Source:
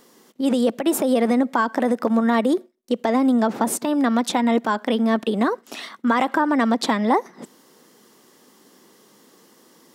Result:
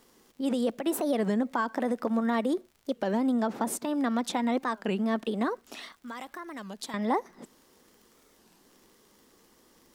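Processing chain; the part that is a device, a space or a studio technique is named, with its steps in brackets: 5.92–6.94 pre-emphasis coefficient 0.8; warped LP (record warp 33 1/3 rpm, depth 250 cents; crackle 65/s -39 dBFS; pink noise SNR 41 dB); gain -8.5 dB

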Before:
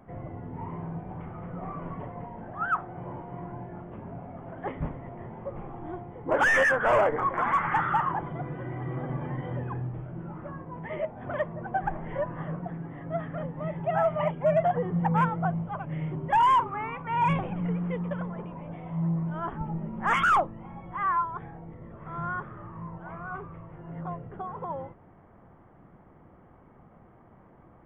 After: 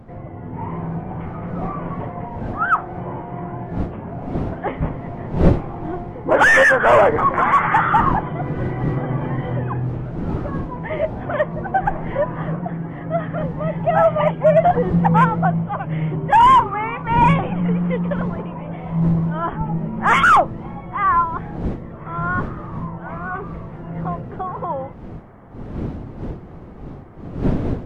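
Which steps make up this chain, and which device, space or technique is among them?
smartphone video outdoors (wind noise 240 Hz -39 dBFS; AGC gain up to 5.5 dB; gain +4.5 dB; AAC 64 kbps 48000 Hz)

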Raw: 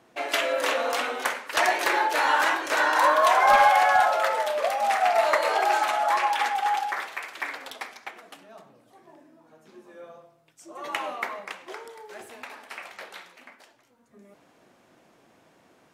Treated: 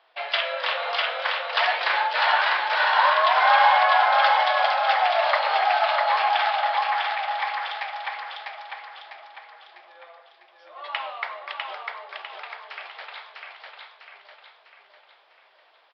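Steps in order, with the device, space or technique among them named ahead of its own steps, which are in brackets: musical greeting card (downsampling 11025 Hz; HPF 630 Hz 24 dB/oct; bell 3300 Hz +5.5 dB 0.41 oct); 4.19–4.79 high shelf 3900 Hz +11 dB; feedback echo 0.65 s, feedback 46%, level -3 dB

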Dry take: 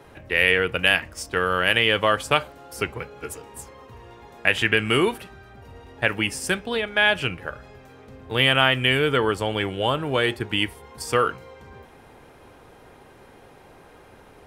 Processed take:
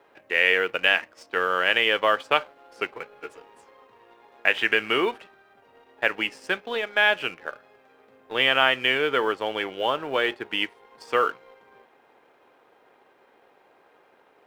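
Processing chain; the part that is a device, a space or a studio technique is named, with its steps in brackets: phone line with mismatched companding (BPF 380–3400 Hz; G.711 law mismatch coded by A)

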